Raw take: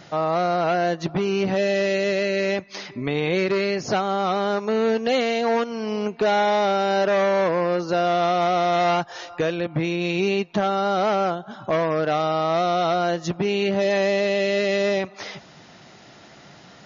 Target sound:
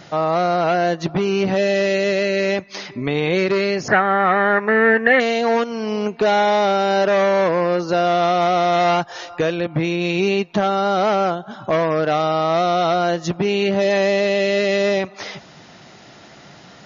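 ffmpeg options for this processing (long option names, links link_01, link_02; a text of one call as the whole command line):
ffmpeg -i in.wav -filter_complex "[0:a]asettb=1/sr,asplit=3[link_01][link_02][link_03];[link_01]atrim=end=3.884[link_04];[link_02]atrim=start=3.88:end=5.2,asetpts=PTS-STARTPTS,afade=type=in:duration=0.004:curve=qsin,afade=type=out:start_time=1.316:duration=0.004:curve=qsin,lowpass=frequency=1800:width_type=q:width=12[link_05];[link_03]atrim=start=5.196[link_06];[link_04][link_05]acrossfade=duration=0.004:curve1=hsin:curve2=qsin[link_07];[link_07][link_06]acrossfade=duration=0.004:curve1=qsin:curve2=hsin,volume=3.5dB" out.wav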